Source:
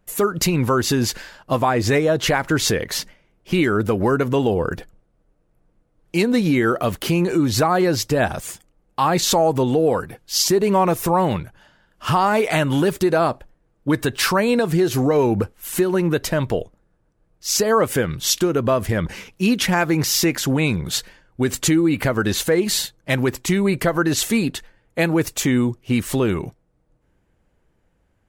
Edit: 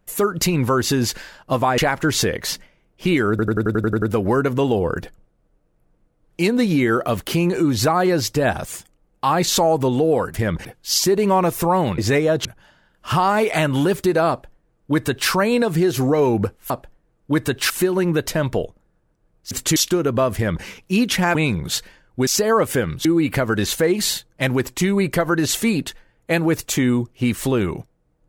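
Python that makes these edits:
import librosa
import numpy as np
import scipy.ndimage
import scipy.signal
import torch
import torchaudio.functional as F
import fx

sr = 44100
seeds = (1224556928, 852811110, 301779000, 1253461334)

y = fx.edit(x, sr, fx.move(start_s=1.78, length_s=0.47, to_s=11.42),
    fx.stutter(start_s=3.77, slice_s=0.09, count=9),
    fx.duplicate(start_s=13.27, length_s=1.0, to_s=15.67),
    fx.swap(start_s=17.48, length_s=0.78, other_s=21.48, other_length_s=0.25),
    fx.duplicate(start_s=18.84, length_s=0.31, to_s=10.09),
    fx.cut(start_s=19.85, length_s=0.71), tone=tone)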